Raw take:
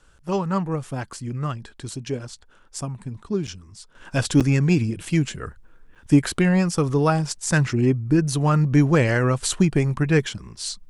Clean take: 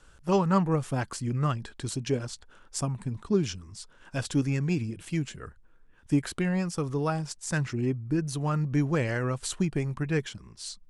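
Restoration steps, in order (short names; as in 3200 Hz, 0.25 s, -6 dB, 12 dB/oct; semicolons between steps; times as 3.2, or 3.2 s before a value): interpolate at 3.47/4.4/5.95, 6.9 ms; gain 0 dB, from 3.95 s -9 dB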